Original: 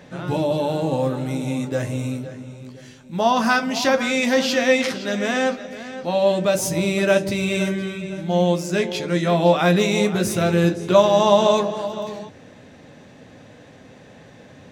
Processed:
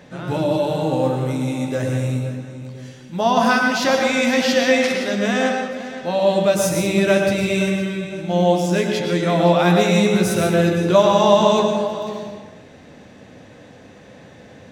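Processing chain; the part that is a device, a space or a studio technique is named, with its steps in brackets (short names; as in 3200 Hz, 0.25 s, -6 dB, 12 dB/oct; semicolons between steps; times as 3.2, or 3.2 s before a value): bathroom (reverb RT60 0.85 s, pre-delay 0.1 s, DRR 2.5 dB)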